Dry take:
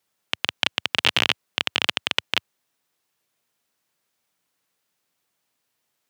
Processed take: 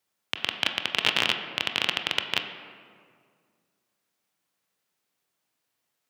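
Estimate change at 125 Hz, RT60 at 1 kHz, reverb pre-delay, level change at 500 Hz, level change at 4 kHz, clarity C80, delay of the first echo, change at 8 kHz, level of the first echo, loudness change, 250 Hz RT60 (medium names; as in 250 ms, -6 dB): -3.5 dB, 1.9 s, 22 ms, -2.5 dB, -3.5 dB, 8.5 dB, no echo, -4.0 dB, no echo, -3.0 dB, 2.4 s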